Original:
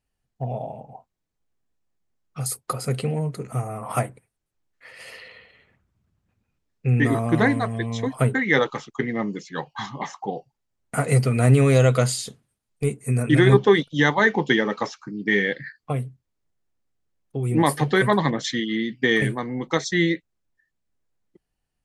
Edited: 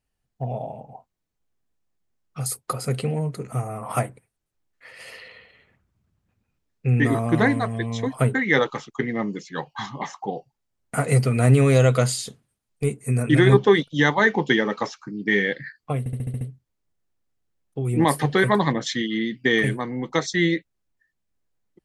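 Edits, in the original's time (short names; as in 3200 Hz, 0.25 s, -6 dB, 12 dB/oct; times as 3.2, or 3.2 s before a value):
15.99 stutter 0.07 s, 7 plays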